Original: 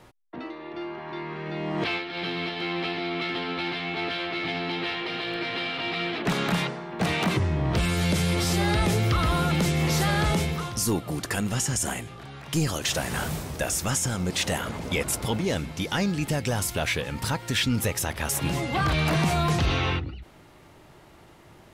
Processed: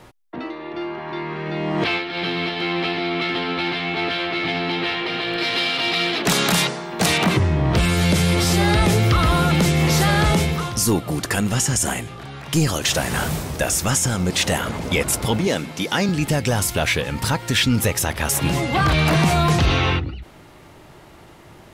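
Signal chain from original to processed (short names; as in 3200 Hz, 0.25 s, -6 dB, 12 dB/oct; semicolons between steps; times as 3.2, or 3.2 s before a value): 5.38–7.18 tone controls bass -3 dB, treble +13 dB; 15.47–16.09 HPF 180 Hz 12 dB/oct; gain +6.5 dB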